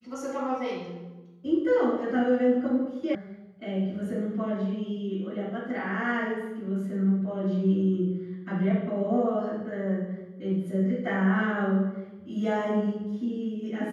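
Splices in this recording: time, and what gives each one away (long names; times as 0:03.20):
0:03.15: cut off before it has died away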